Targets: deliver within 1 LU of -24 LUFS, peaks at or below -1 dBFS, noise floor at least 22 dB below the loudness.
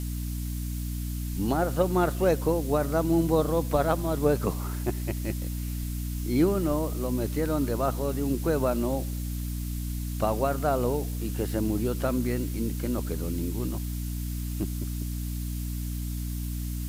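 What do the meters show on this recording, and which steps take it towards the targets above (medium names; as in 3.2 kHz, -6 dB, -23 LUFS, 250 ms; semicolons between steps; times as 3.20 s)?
hum 60 Hz; highest harmonic 300 Hz; hum level -29 dBFS; noise floor -32 dBFS; noise floor target -51 dBFS; loudness -28.5 LUFS; peak level -11.0 dBFS; loudness target -24.0 LUFS
-> de-hum 60 Hz, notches 5; noise print and reduce 19 dB; trim +4.5 dB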